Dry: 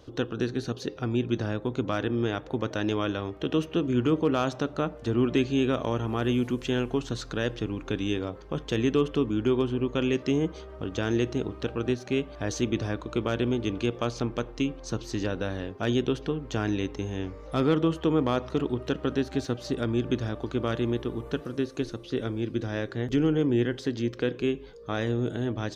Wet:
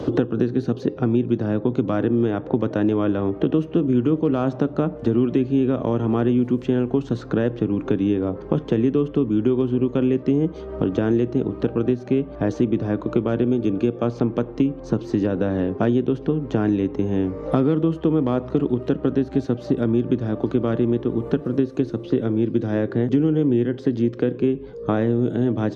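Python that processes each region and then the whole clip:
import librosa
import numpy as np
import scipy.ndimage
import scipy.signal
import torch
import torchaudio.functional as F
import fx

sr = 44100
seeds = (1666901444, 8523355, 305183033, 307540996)

y = fx.chain(x, sr, fx.high_shelf(hz=6200.0, db=10.0),
    fx.notch_comb(f0_hz=1000.0), at=(13.44, 14.03))
y = scipy.signal.sosfilt(scipy.signal.butter(2, 190.0, 'highpass', fs=sr, output='sos'), y)
y = fx.tilt_eq(y, sr, slope=-4.5)
y = fx.band_squash(y, sr, depth_pct=100)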